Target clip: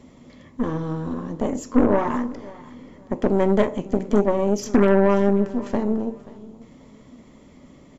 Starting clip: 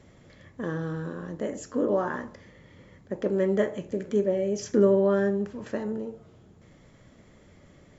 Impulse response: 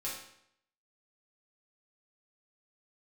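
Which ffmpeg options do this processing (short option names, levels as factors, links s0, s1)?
-af "equalizer=f=100:t=o:w=0.33:g=-10,equalizer=f=250:t=o:w=0.33:g=12,equalizer=f=1000:t=o:w=0.33:g=6,equalizer=f=1600:t=o:w=0.33:g=-9,aeval=exprs='0.473*(cos(1*acos(clip(val(0)/0.473,-1,1)))-cos(1*PI/2))+0.0188*(cos(5*acos(clip(val(0)/0.473,-1,1)))-cos(5*PI/2))+0.0596*(cos(8*acos(clip(val(0)/0.473,-1,1)))-cos(8*PI/2))':c=same,aecho=1:1:533|1066:0.1|0.025,alimiter=level_in=2.66:limit=0.891:release=50:level=0:latency=1,volume=0.501" -ar 48000 -c:a aac -b:a 192k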